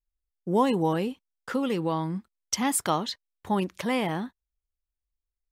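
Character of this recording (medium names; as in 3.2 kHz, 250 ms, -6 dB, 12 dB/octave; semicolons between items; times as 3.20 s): noise floor -87 dBFS; spectral tilt -4.5 dB/octave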